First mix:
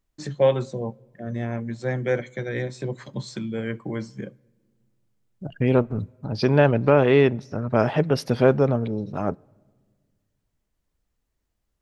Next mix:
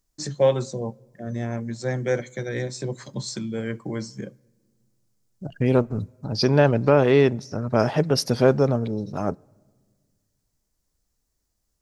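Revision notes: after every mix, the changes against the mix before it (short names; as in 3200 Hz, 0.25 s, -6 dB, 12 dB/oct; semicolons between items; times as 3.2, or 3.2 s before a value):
master: add resonant high shelf 4000 Hz +8 dB, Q 1.5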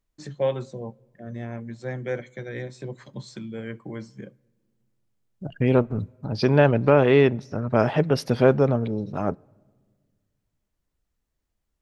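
first voice -5.5 dB; master: add resonant high shelf 4000 Hz -8 dB, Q 1.5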